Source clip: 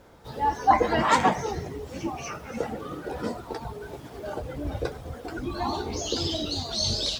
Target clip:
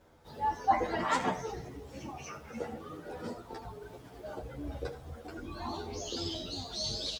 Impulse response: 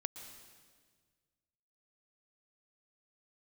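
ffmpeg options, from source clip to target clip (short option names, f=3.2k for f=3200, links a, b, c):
-filter_complex "[1:a]atrim=start_sample=2205,afade=t=out:st=0.17:d=0.01,atrim=end_sample=7938,asetrate=66150,aresample=44100[a];[0:a][a]afir=irnorm=-1:irlink=0,asplit=2[b][c];[c]adelay=10.1,afreqshift=0.37[d];[b][d]amix=inputs=2:normalize=1"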